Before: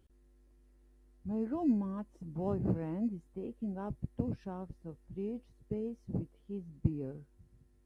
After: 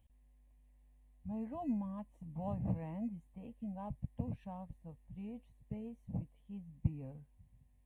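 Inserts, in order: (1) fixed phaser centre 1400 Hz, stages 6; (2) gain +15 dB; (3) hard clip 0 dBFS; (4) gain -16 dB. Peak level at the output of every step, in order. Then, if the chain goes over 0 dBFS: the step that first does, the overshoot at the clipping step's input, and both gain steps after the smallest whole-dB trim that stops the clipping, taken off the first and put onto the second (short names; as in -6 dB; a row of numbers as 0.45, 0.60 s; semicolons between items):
-17.5, -2.5, -2.5, -18.5 dBFS; no overload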